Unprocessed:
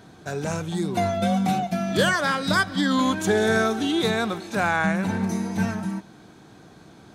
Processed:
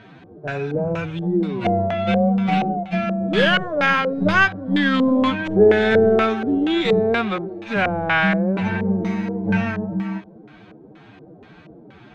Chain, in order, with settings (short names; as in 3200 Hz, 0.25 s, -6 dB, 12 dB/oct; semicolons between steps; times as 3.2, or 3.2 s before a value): tracing distortion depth 0.11 ms; time stretch by phase-locked vocoder 1.7×; LFO low-pass square 2.1 Hz 500–2600 Hz; gain +3 dB